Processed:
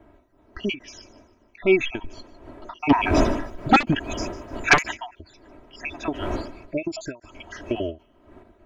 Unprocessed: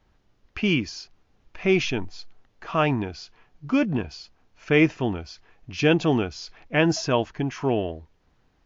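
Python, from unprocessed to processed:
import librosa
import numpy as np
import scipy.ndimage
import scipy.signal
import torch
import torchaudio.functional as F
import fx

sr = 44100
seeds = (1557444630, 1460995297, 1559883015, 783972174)

y = fx.spec_dropout(x, sr, seeds[0], share_pct=61)
y = fx.dmg_wind(y, sr, seeds[1], corner_hz=490.0, level_db=-43.0)
y = fx.peak_eq(y, sr, hz=5100.0, db=-13.0, octaves=1.1)
y = y + 0.7 * np.pad(y, (int(3.1 * sr / 1000.0), 0))[:len(y)]
y = fx.echo_wet_highpass(y, sr, ms=150, feedback_pct=32, hz=4000.0, wet_db=-16.0)
y = fx.fold_sine(y, sr, drive_db=13, ceiling_db=-8.5, at=(2.89, 4.96), fade=0.02)
y = fx.high_shelf(y, sr, hz=2000.0, db=7.0)
y = fx.end_taper(y, sr, db_per_s=250.0)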